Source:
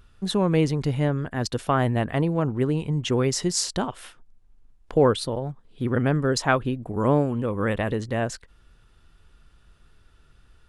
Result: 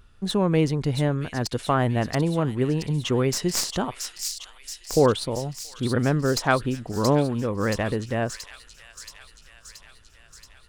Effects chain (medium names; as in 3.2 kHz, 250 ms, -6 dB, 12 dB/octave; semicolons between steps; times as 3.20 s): tracing distortion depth 0.038 ms; on a send: feedback echo behind a high-pass 677 ms, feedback 66%, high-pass 3.4 kHz, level -3.5 dB